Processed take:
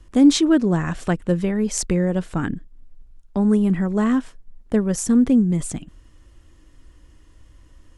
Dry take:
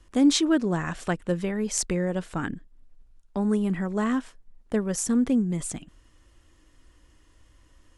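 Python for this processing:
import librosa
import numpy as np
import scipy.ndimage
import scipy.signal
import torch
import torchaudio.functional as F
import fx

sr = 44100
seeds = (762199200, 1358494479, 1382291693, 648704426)

y = fx.low_shelf(x, sr, hz=370.0, db=7.0)
y = y * 10.0 ** (2.0 / 20.0)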